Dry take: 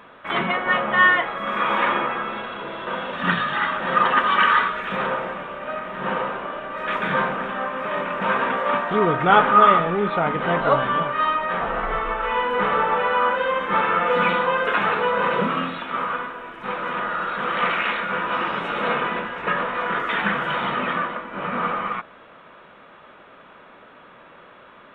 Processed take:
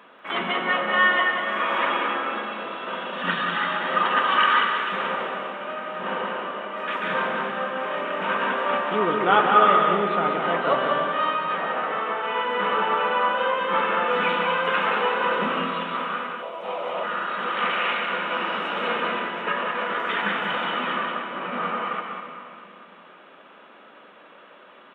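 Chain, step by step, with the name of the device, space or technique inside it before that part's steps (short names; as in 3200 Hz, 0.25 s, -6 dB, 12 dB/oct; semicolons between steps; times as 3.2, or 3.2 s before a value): PA in a hall (HPF 190 Hz 24 dB/oct; bell 2900 Hz +5 dB 0.29 oct; echo 0.19 s -5.5 dB; reverb RT60 2.8 s, pre-delay 99 ms, DRR 6.5 dB); 16.42–17.04 fifteen-band EQ 250 Hz -9 dB, 630 Hz +12 dB, 1600 Hz -10 dB; gain -4 dB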